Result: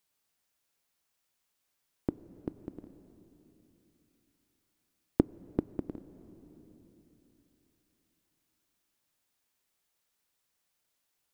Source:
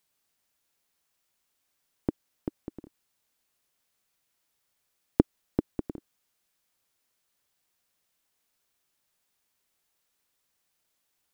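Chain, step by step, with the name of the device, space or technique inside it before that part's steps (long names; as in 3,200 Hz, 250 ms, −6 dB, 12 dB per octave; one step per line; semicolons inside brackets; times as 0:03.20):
compressed reverb return (on a send at −10 dB: convolution reverb RT60 3.2 s, pre-delay 15 ms + downward compressor 5 to 1, threshold −37 dBFS, peak gain reduction 13.5 dB)
on the sum: level −3 dB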